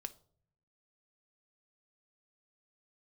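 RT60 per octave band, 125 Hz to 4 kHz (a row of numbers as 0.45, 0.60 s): 1.1, 0.95, 0.65, 0.50, 0.30, 0.35 s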